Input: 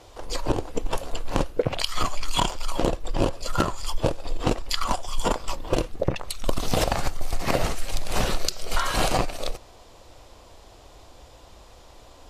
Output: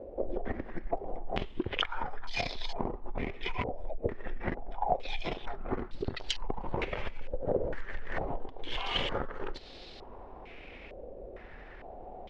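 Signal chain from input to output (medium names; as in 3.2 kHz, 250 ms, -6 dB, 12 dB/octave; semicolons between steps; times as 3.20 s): compression 16:1, threshold -29 dBFS, peak gain reduction 14.5 dB; pitch shift -5.5 st; step-sequenced low-pass 2.2 Hz 560–4200 Hz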